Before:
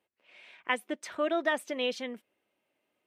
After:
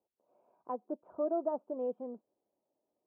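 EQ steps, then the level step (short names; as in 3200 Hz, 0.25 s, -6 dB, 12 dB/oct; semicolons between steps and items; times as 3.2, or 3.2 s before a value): inverse Chebyshev low-pass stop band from 1800 Hz, stop band 40 dB; air absorption 370 m; low shelf 280 Hz -7 dB; 0.0 dB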